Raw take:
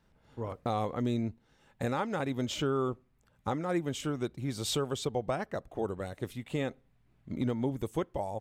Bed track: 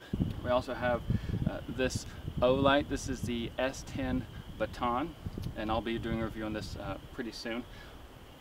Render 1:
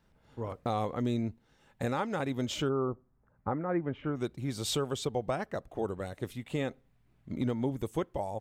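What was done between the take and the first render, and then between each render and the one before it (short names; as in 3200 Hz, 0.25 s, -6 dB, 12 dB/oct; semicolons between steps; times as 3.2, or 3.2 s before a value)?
2.68–4.15 LPF 1200 Hz -> 2300 Hz 24 dB/oct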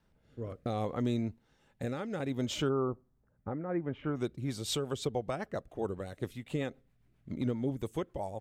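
rotary speaker horn 0.65 Hz, later 7.5 Hz, at 4.04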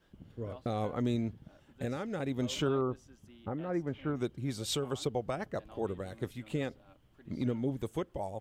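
add bed track -21.5 dB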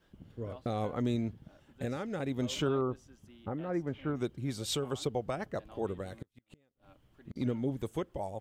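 6.13–7.36 flipped gate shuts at -32 dBFS, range -37 dB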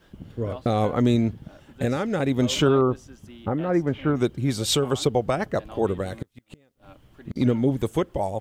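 gain +11.5 dB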